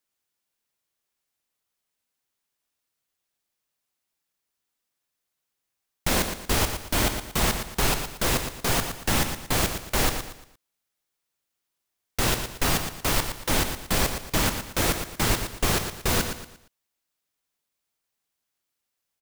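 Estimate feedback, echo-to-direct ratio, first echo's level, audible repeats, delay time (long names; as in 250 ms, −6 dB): 35%, −7.5 dB, −8.0 dB, 3, 116 ms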